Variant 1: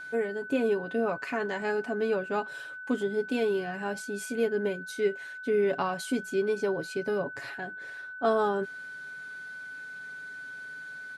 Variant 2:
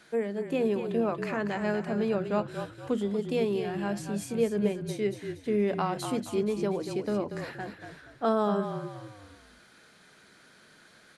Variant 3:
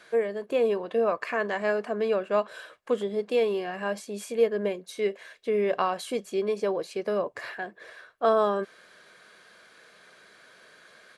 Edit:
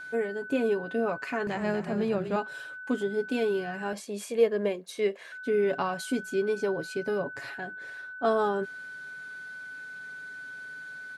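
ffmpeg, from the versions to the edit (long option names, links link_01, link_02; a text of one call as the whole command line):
ffmpeg -i take0.wav -i take1.wav -i take2.wav -filter_complex "[0:a]asplit=3[link_01][link_02][link_03];[link_01]atrim=end=1.472[link_04];[1:a]atrim=start=1.468:end=2.362[link_05];[link_02]atrim=start=2.358:end=3.932[link_06];[2:a]atrim=start=3.928:end=5.322[link_07];[link_03]atrim=start=5.318[link_08];[link_04][link_05]acrossfade=duration=0.004:curve1=hsin:curve2=hsin[link_09];[link_09][link_06]acrossfade=duration=0.004:curve1=hsin:curve2=hsin[link_10];[link_10][link_07]acrossfade=duration=0.004:curve1=hsin:curve2=hsin[link_11];[link_11][link_08]acrossfade=duration=0.004:curve1=hsin:curve2=hsin" out.wav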